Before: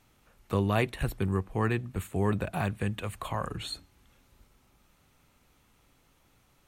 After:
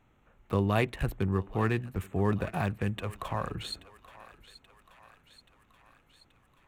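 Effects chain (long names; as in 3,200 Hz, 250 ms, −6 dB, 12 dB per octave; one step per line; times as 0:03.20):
adaptive Wiener filter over 9 samples
on a send: feedback echo with a high-pass in the loop 830 ms, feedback 67%, high-pass 770 Hz, level −15.5 dB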